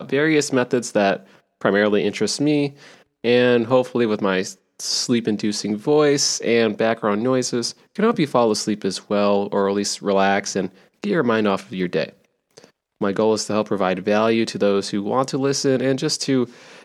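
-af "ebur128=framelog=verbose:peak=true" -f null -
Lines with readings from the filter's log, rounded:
Integrated loudness:
  I:         -20.1 LUFS
  Threshold: -30.5 LUFS
Loudness range:
  LRA:         2.8 LU
  Threshold: -40.5 LUFS
  LRA low:   -22.3 LUFS
  LRA high:  -19.5 LUFS
True peak:
  Peak:       -2.1 dBFS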